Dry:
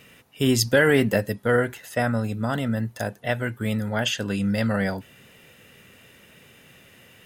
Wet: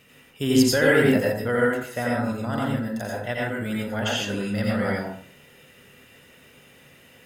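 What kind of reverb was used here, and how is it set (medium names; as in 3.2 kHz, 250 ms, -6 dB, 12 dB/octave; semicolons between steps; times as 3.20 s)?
plate-style reverb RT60 0.52 s, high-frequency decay 0.6×, pre-delay 75 ms, DRR -3.5 dB; trim -5 dB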